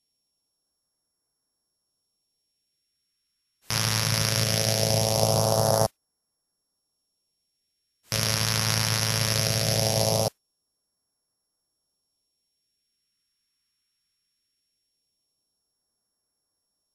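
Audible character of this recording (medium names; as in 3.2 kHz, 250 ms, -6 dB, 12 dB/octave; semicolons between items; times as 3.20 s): a buzz of ramps at a fixed pitch in blocks of 8 samples; phasing stages 2, 0.2 Hz, lowest notch 640–2600 Hz; WMA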